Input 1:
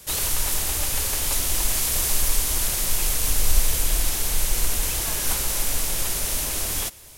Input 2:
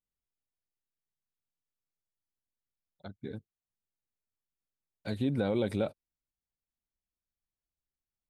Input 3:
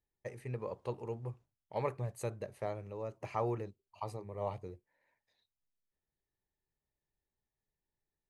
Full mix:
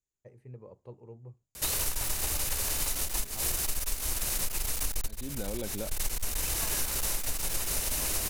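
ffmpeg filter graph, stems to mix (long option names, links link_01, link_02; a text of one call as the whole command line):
ffmpeg -i stem1.wav -i stem2.wav -i stem3.wav -filter_complex "[0:a]bandreject=frequency=3300:width=15,aeval=exprs='clip(val(0),-1,0.0631)':channel_layout=same,adelay=1550,volume=2dB[link_01];[1:a]lowpass=frequency=7000:width_type=q:width=9,volume=-7dB,asplit=2[link_02][link_03];[2:a]tiltshelf=frequency=790:gain=7,volume=-12dB[link_04];[link_03]apad=whole_len=384701[link_05];[link_01][link_05]sidechaincompress=threshold=-55dB:ratio=3:attack=16:release=123[link_06];[link_06][link_02][link_04]amix=inputs=3:normalize=0,acompressor=threshold=-27dB:ratio=6" out.wav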